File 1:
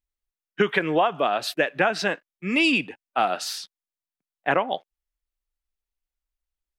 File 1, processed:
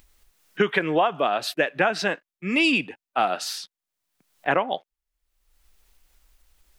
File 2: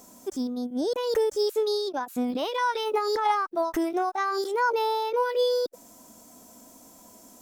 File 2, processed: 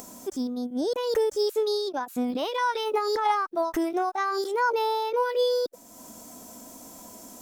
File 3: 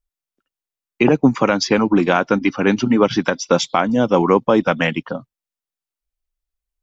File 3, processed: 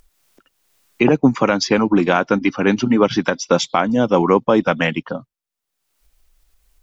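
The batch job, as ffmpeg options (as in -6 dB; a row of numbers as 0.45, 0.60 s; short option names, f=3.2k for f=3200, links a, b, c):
-af "acompressor=mode=upward:threshold=-37dB:ratio=2.5"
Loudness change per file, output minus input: 0.0, 0.0, 0.0 LU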